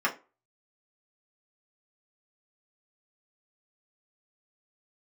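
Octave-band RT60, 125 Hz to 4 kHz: 0.25, 0.30, 0.30, 0.30, 0.25, 0.20 seconds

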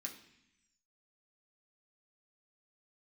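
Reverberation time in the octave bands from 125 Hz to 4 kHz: 1.1, 1.1, 0.70, 0.75, 1.1, 1.2 seconds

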